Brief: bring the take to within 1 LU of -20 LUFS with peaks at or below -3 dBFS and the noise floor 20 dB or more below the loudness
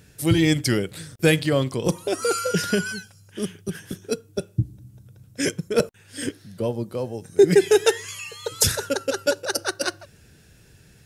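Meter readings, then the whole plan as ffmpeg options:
loudness -23.5 LUFS; peak -2.0 dBFS; loudness target -20.0 LUFS
-> -af "volume=3.5dB,alimiter=limit=-3dB:level=0:latency=1"

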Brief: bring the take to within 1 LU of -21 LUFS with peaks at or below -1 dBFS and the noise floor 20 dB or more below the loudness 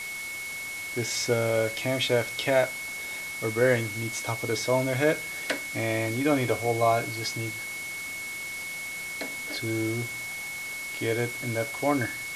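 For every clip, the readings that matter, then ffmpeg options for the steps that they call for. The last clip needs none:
steady tone 2200 Hz; tone level -34 dBFS; noise floor -36 dBFS; noise floor target -48 dBFS; loudness -28.0 LUFS; peak -10.5 dBFS; loudness target -21.0 LUFS
-> -af "bandreject=f=2.2k:w=30"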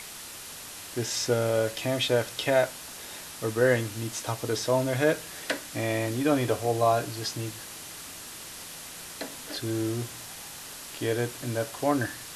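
steady tone none; noise floor -42 dBFS; noise floor target -49 dBFS
-> -af "afftdn=nr=7:nf=-42"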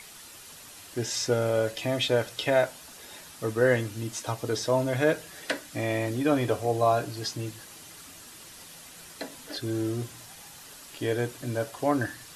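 noise floor -48 dBFS; loudness -28.0 LUFS; peak -11.0 dBFS; loudness target -21.0 LUFS
-> -af "volume=7dB"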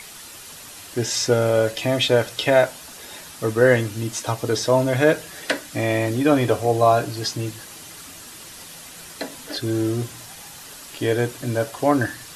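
loudness -21.0 LUFS; peak -4.0 dBFS; noise floor -41 dBFS

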